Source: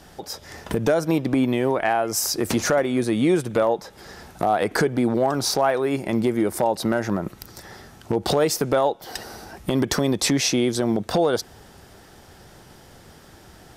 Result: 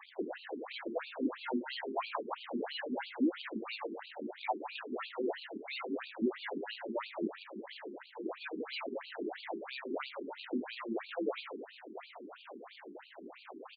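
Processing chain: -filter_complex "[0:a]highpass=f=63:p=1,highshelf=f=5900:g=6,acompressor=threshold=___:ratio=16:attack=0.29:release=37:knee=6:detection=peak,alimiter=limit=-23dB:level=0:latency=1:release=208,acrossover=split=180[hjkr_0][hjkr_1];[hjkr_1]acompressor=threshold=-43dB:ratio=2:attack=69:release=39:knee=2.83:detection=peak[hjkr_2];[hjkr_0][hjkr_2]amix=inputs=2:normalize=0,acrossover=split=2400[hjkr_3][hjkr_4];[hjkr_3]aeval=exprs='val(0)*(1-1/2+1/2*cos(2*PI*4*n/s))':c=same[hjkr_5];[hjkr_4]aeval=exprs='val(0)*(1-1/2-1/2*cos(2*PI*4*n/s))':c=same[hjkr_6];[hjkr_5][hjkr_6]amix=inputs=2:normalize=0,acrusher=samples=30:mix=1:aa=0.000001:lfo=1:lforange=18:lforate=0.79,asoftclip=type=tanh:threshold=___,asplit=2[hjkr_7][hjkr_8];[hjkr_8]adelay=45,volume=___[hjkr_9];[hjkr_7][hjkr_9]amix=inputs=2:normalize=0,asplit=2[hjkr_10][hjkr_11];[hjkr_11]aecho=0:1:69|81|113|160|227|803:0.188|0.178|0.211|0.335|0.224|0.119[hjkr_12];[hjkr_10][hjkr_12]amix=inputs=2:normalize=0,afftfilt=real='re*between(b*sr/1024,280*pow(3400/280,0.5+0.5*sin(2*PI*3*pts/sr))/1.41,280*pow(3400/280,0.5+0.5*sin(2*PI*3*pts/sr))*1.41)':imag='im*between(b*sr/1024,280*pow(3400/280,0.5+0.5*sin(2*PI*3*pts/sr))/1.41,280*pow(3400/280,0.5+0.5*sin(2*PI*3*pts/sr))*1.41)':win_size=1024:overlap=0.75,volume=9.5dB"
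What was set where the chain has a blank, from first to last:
-22dB, -31dB, -13dB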